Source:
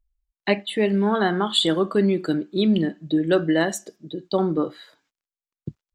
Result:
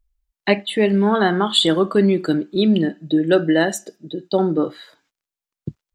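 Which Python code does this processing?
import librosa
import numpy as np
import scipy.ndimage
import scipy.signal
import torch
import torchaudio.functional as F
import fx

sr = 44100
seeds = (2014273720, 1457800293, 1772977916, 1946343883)

y = fx.notch_comb(x, sr, f0_hz=1100.0, at=(2.55, 4.63))
y = y * 10.0 ** (4.0 / 20.0)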